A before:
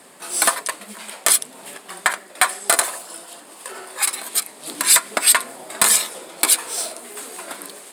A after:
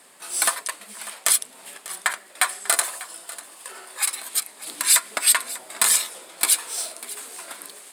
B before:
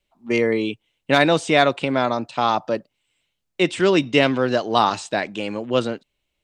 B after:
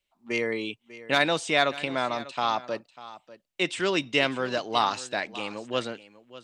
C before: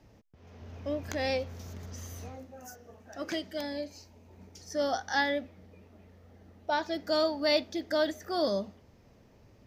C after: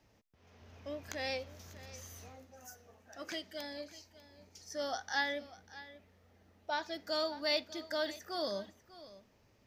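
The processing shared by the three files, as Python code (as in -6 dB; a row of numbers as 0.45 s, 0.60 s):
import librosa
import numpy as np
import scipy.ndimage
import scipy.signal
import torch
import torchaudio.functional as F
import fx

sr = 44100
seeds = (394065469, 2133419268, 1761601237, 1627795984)

p1 = fx.tilt_shelf(x, sr, db=-4.5, hz=730.0)
p2 = p1 + fx.echo_single(p1, sr, ms=595, db=-17.0, dry=0)
y = p2 * librosa.db_to_amplitude(-7.5)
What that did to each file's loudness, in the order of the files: -3.5 LU, -7.0 LU, -6.5 LU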